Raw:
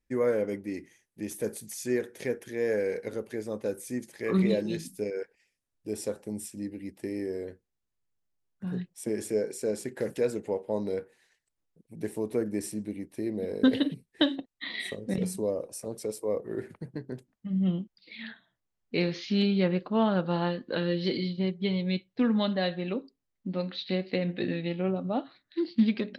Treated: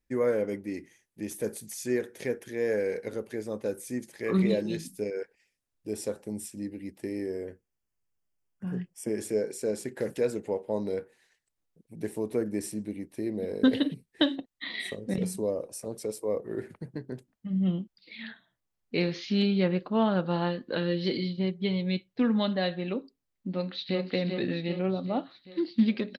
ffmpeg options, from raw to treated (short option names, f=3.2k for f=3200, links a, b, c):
-filter_complex "[0:a]asettb=1/sr,asplit=3[a][b][c];[a]atrim=end=7.324[d];[b]atrim=start=7.32:end=9.18,asetpts=PTS-STARTPTS,afade=t=in:d=0.004:c=qsin,afade=t=out:st=1.856:d=0.004:c=qsin,asuperstop=centerf=3900:order=4:qfactor=3.3[e];[c]atrim=start=9.176[f];[d][e]acrossfade=d=0.004:c1=hsin:c2=qsin[g];[g][f]acrossfade=d=0.004:c1=qsin:c2=hsin,asplit=2[h][i];[i]afade=t=in:st=23.5:d=0.01,afade=t=out:st=24.07:d=0.01,aecho=0:1:390|780|1170|1560|1950|2340|2730:0.562341|0.309288|0.170108|0.0935595|0.0514577|0.0283018|0.015566[j];[h][j]amix=inputs=2:normalize=0"